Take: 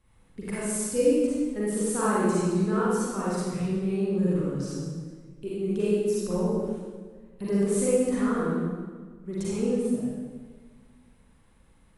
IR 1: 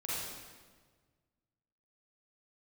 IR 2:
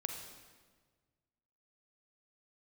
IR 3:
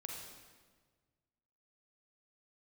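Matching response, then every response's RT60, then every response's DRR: 1; 1.5 s, 1.5 s, 1.5 s; -8.5 dB, 3.5 dB, -0.5 dB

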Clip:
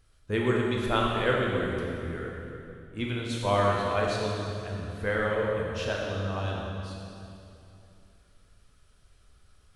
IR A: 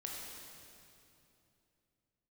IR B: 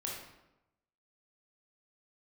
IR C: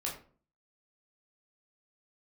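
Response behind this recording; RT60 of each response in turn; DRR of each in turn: A; 2.9 s, 0.95 s, 0.45 s; -2.5 dB, -3.0 dB, -3.5 dB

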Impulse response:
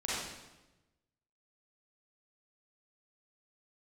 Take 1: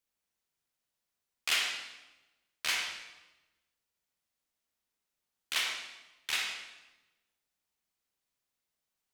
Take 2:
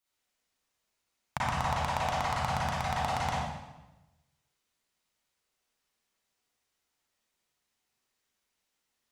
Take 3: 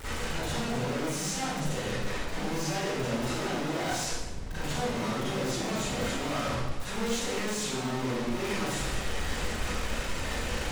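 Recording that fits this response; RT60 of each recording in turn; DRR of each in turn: 2; 1.1 s, 1.1 s, 1.1 s; 0.5 dB, -8.5 dB, -13.5 dB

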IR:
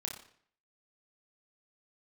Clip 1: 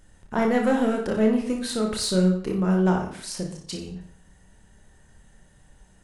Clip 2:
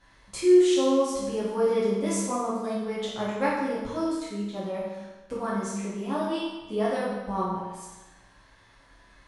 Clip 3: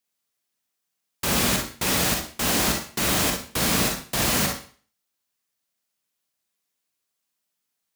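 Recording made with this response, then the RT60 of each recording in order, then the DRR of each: 1; 0.60 s, 1.2 s, 0.40 s; 1.0 dB, -9.0 dB, 1.0 dB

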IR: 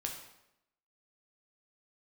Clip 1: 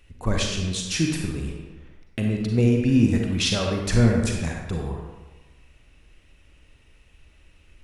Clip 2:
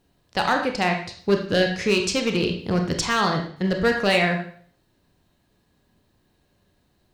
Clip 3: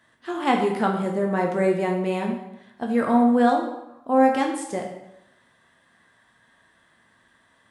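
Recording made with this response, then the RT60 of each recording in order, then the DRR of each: 3; 1.3 s, 0.55 s, 0.85 s; 0.5 dB, 3.0 dB, 1.0 dB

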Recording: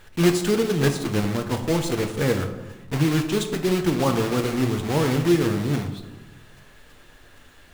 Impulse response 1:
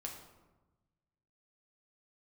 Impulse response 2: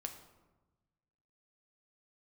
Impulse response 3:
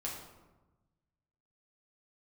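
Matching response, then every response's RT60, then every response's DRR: 2; 1.1 s, 1.1 s, 1.1 s; -0.5 dB, 4.5 dB, -4.5 dB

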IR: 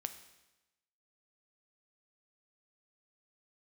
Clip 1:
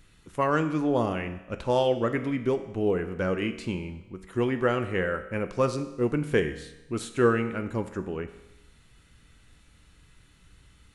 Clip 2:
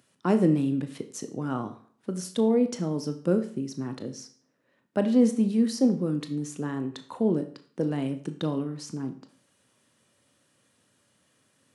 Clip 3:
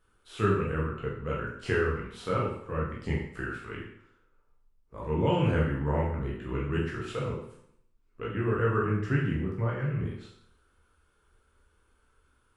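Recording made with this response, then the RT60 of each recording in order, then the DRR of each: 1; 1.0 s, 0.50 s, 0.65 s; 8.5 dB, 8.0 dB, -4.5 dB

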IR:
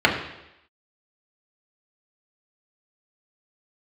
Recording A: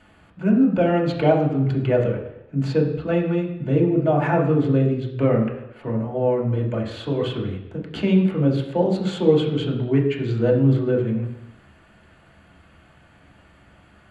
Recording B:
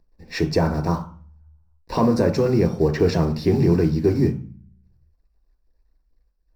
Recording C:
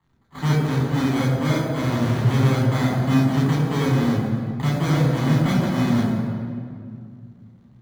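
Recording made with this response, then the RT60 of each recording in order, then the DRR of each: A; 0.85 s, 0.45 s, 2.2 s; -2.5 dB, 5.5 dB, -4.0 dB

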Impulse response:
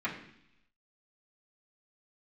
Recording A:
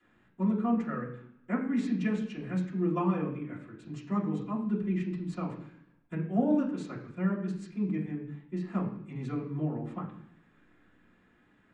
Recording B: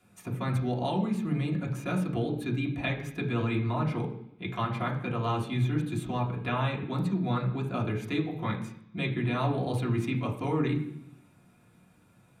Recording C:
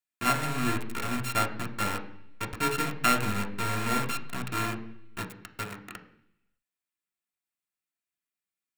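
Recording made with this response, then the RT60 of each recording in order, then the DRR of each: A; 0.70 s, 0.70 s, 0.70 s; -10.0 dB, -3.0 dB, 2.5 dB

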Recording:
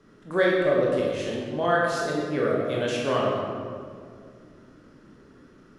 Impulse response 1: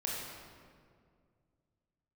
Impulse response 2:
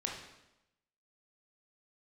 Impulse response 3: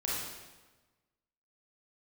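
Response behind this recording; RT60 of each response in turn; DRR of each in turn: 1; 2.1 s, 0.90 s, 1.2 s; -4.5 dB, -1.0 dB, -6.5 dB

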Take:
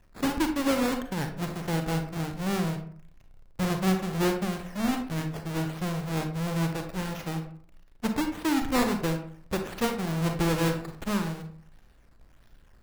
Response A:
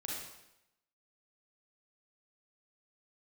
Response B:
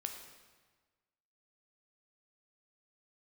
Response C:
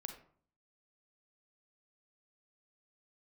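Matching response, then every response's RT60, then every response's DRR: C; 0.85 s, 1.4 s, 0.55 s; -4.0 dB, 3.5 dB, 5.5 dB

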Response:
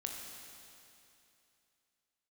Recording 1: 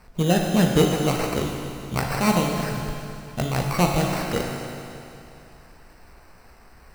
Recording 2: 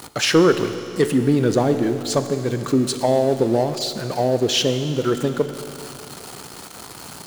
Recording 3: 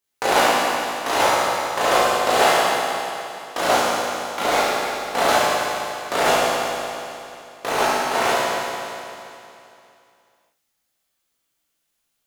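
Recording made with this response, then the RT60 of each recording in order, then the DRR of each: 1; 2.8 s, 2.8 s, 2.8 s; 0.5 dB, 9.0 dB, -9.5 dB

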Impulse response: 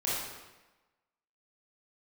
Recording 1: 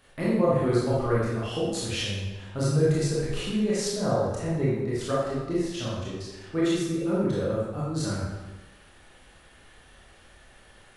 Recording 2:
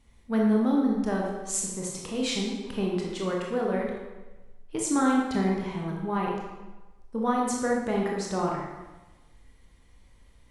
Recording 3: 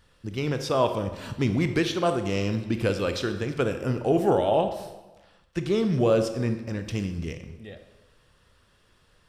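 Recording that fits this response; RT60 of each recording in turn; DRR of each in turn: 1; 1.1 s, 1.1 s, 1.1 s; -8.0 dB, -2.0 dB, 7.5 dB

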